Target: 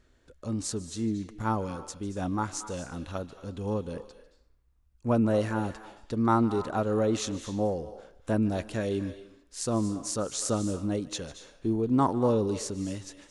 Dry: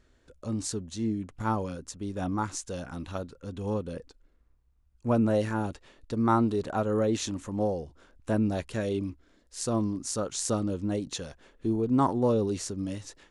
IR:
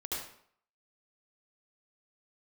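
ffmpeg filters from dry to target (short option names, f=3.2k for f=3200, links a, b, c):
-filter_complex "[0:a]asplit=2[a][b];[b]highpass=f=930:p=1[c];[1:a]atrim=start_sample=2205,adelay=149[d];[c][d]afir=irnorm=-1:irlink=0,volume=-12dB[e];[a][e]amix=inputs=2:normalize=0"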